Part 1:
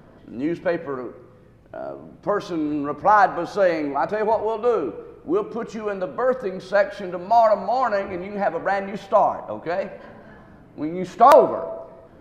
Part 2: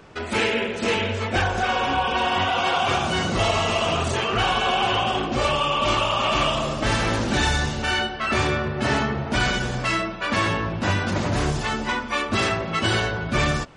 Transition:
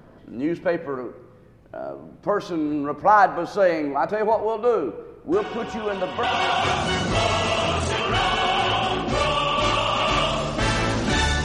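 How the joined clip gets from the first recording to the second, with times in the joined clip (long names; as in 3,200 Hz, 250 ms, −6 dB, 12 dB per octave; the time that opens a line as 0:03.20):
part 1
0:05.32: mix in part 2 from 0:01.56 0.91 s −12 dB
0:06.23: continue with part 2 from 0:02.47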